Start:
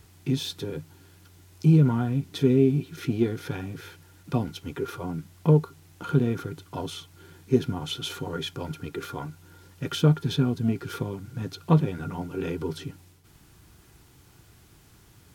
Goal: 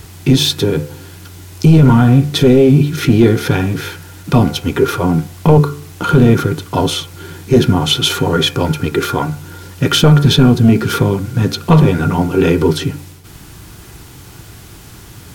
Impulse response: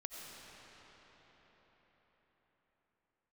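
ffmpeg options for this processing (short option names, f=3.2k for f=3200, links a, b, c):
-af "bandreject=f=72.8:t=h:w=4,bandreject=f=145.6:t=h:w=4,bandreject=f=218.4:t=h:w=4,bandreject=f=291.2:t=h:w=4,bandreject=f=364:t=h:w=4,bandreject=f=436.8:t=h:w=4,bandreject=f=509.6:t=h:w=4,bandreject=f=582.4:t=h:w=4,bandreject=f=655.2:t=h:w=4,bandreject=f=728:t=h:w=4,bandreject=f=800.8:t=h:w=4,bandreject=f=873.6:t=h:w=4,bandreject=f=946.4:t=h:w=4,bandreject=f=1.0192k:t=h:w=4,bandreject=f=1.092k:t=h:w=4,bandreject=f=1.1648k:t=h:w=4,bandreject=f=1.2376k:t=h:w=4,bandreject=f=1.3104k:t=h:w=4,bandreject=f=1.3832k:t=h:w=4,bandreject=f=1.456k:t=h:w=4,bandreject=f=1.5288k:t=h:w=4,bandreject=f=1.6016k:t=h:w=4,bandreject=f=1.6744k:t=h:w=4,bandreject=f=1.7472k:t=h:w=4,bandreject=f=1.82k:t=h:w=4,bandreject=f=1.8928k:t=h:w=4,bandreject=f=1.9656k:t=h:w=4,bandreject=f=2.0384k:t=h:w=4,bandreject=f=2.1112k:t=h:w=4,bandreject=f=2.184k:t=h:w=4,bandreject=f=2.2568k:t=h:w=4,bandreject=f=2.3296k:t=h:w=4,bandreject=f=2.4024k:t=h:w=4,bandreject=f=2.4752k:t=h:w=4,bandreject=f=2.548k:t=h:w=4,apsyclip=21.5dB,volume=-2.5dB"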